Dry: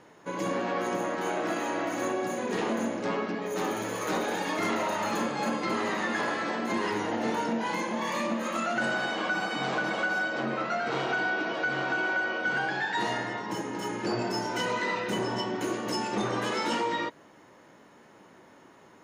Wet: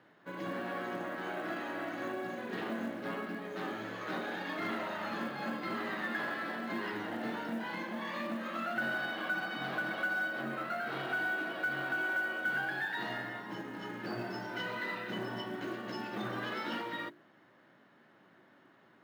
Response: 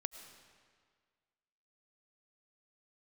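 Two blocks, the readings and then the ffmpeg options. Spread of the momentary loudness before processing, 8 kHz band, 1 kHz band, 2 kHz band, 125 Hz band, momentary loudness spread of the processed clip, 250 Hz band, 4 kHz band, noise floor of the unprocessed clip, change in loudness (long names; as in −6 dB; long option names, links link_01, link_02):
3 LU, below −15 dB, −9.0 dB, −4.5 dB, −7.5 dB, 7 LU, −7.5 dB, −8.5 dB, −55 dBFS, −7.0 dB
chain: -af "highpass=frequency=100:width=0.5412,highpass=frequency=100:width=1.3066,equalizer=frequency=470:width_type=q:width=4:gain=-7,equalizer=frequency=930:width_type=q:width=4:gain=-6,equalizer=frequency=1600:width_type=q:width=4:gain=4,equalizer=frequency=2400:width_type=q:width=4:gain=-3,lowpass=frequency=4200:width=0.5412,lowpass=frequency=4200:width=1.3066,bandreject=frequency=50:width_type=h:width=6,bandreject=frequency=100:width_type=h:width=6,bandreject=frequency=150:width_type=h:width=6,bandreject=frequency=200:width_type=h:width=6,bandreject=frequency=250:width_type=h:width=6,bandreject=frequency=300:width_type=h:width=6,bandreject=frequency=350:width_type=h:width=6,bandreject=frequency=400:width_type=h:width=6,acrusher=bits=7:mode=log:mix=0:aa=0.000001,volume=-6.5dB"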